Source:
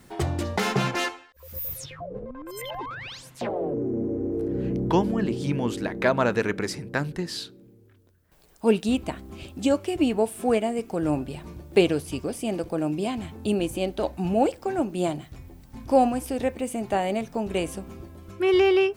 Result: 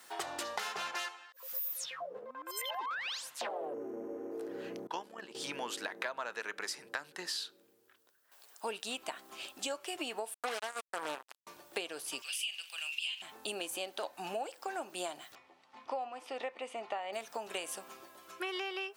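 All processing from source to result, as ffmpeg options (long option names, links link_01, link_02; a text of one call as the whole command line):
ffmpeg -i in.wav -filter_complex "[0:a]asettb=1/sr,asplit=3[link_01][link_02][link_03];[link_01]atrim=end=4.874[link_04];[link_02]atrim=start=4.87:end=5.35,asetpts=PTS-STARTPTS,afade=type=in:duration=0.004:curve=qsin,afade=type=out:start_time=0.476:duration=0.004:curve=qsin,agate=range=-33dB:threshold=-18dB:ratio=3:release=100:detection=peak,acompressor=threshold=-22dB:ratio=2.5:attack=3.2:release=140:knee=1:detection=peak,tremolo=f=70:d=0.519[link_05];[link_03]atrim=start=5.346[link_06];[link_04][link_05]acrossfade=duration=0.004:curve1=hsin:curve2=qsin[link_07];[link_07][link_06]acrossfade=duration=0.004:curve1=qsin:curve2=hsin,asettb=1/sr,asplit=3[link_08][link_09][link_10];[link_08]atrim=end=10.344[link_11];[link_09]atrim=start=10.34:end=11.47,asetpts=PTS-STARTPTS,afade=type=in:duration=0.004:curve=qsin,afade=type=out:start_time=1.126:duration=0.004:curve=qsin,acontrast=52,acrusher=bits=2:mix=0:aa=0.5[link_12];[link_10]atrim=start=11.466[link_13];[link_11][link_12]acrossfade=duration=0.004:curve1=hsin:curve2=qsin[link_14];[link_14][link_13]acrossfade=duration=0.004:curve1=qsin:curve2=hsin,asettb=1/sr,asplit=3[link_15][link_16][link_17];[link_15]atrim=end=12.224[link_18];[link_16]atrim=start=12.22:end=13.22,asetpts=PTS-STARTPTS,afade=type=in:duration=0.004:curve=qsin,afade=type=out:start_time=0.996:duration=0.004:curve=qsin,highpass=frequency=2800:width_type=q:width=7.9,asplit=2[link_19][link_20];[link_20]adelay=42,volume=-13dB[link_21];[link_19][link_21]amix=inputs=2:normalize=0,atrim=end_sample=44100[link_22];[link_17]atrim=start=13.216[link_23];[link_18][link_22]acrossfade=duration=0.004:curve1=hsin:curve2=qsin[link_24];[link_24][link_23]acrossfade=duration=0.004:curve1=qsin:curve2=hsin,asettb=1/sr,asplit=3[link_25][link_26][link_27];[link_25]atrim=end=15.354[link_28];[link_26]atrim=start=15.35:end=17.13,asetpts=PTS-STARTPTS,afade=type=in:duration=0.004:curve=qsin,afade=type=out:start_time=1.776:duration=0.004:curve=qsin,lowpass=2900,lowshelf=frequency=240:gain=-7,bandreject=frequency=1600:width=5.8[link_29];[link_27]atrim=start=17.126[link_30];[link_28][link_29]acrossfade=duration=0.004:curve1=hsin:curve2=qsin[link_31];[link_31][link_30]acrossfade=duration=0.004:curve1=qsin:curve2=hsin,highpass=920,equalizer=frequency=2200:width_type=o:width=0.29:gain=-4.5,acompressor=threshold=-37dB:ratio=12,volume=2.5dB" out.wav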